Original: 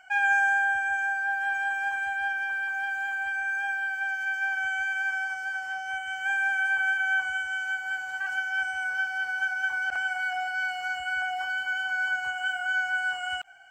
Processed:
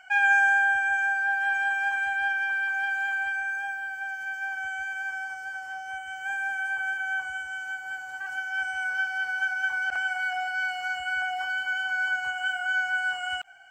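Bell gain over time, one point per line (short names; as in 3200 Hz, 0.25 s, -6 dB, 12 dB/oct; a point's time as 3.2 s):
bell 2600 Hz 2.4 oct
3.17 s +3.5 dB
3.77 s -5.5 dB
8.26 s -5.5 dB
8.8 s +1 dB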